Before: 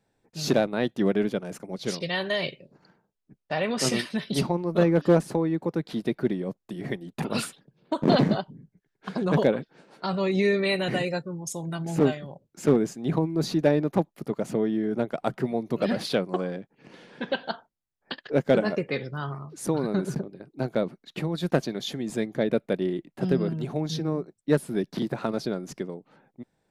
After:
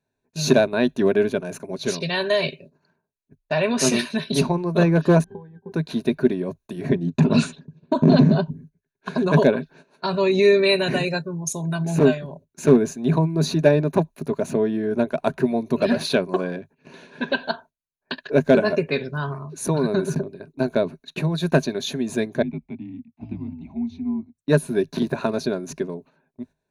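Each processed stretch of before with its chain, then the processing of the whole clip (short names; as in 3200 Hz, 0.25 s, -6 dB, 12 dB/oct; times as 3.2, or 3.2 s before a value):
5.24–5.72 median filter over 9 samples + octave resonator G, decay 0.15 s + mismatched tape noise reduction decoder only
6.89–8.51 steep low-pass 8100 Hz + bell 170 Hz +12 dB 2.3 oct + compressor 3:1, threshold -18 dBFS
22.42–24.36 vowel filter u + frequency shift -72 Hz
whole clip: gate -50 dBFS, range -12 dB; ripple EQ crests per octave 1.5, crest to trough 10 dB; gain +4 dB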